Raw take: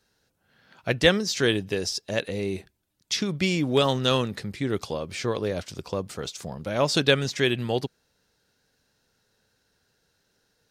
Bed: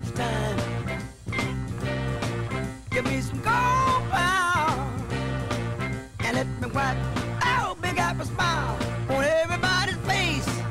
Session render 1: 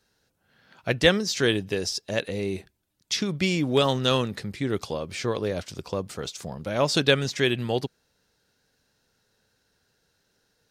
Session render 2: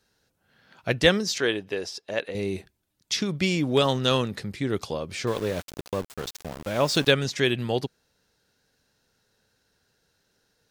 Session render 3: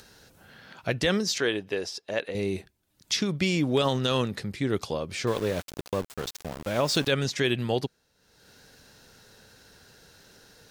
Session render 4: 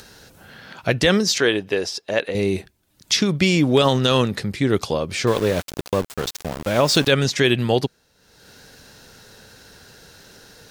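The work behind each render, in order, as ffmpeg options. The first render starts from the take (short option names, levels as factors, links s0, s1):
-af anull
-filter_complex "[0:a]asettb=1/sr,asplit=3[s0][s1][s2];[s0]atrim=end=1.384[s3];[s1]atrim=start=1.38:end=2.35,asetpts=PTS-STARTPTS,afade=t=in:d=0.004:c=qsin,afade=t=out:st=0.966:d=0.004:c=qsin,bass=f=250:g=-12,treble=f=4000:g=-10[s4];[s2]atrim=start=2.346[s5];[s3][s4]acrossfade=d=0.004:c1=hsin:c2=qsin[s6];[s6][s5]acrossfade=d=0.004:c1=qsin:c2=hsin,asettb=1/sr,asplit=3[s7][s8][s9];[s7]atrim=end=5.274[s10];[s8]atrim=start=5.27:end=7.12,asetpts=PTS-STARTPTS,afade=t=in:d=0.004:c=qsin,afade=t=out:st=1.846:d=0.004:c=qsin,aeval=exprs='val(0)*gte(abs(val(0)),0.0211)':c=same[s11];[s9]atrim=start=7.116[s12];[s10][s11]acrossfade=d=0.004:c1=hsin:c2=qsin[s13];[s13][s12]acrossfade=d=0.004:c1=qsin:c2=hsin"
-af "acompressor=mode=upward:threshold=0.01:ratio=2.5,alimiter=limit=0.211:level=0:latency=1:release=50"
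-af "volume=2.51"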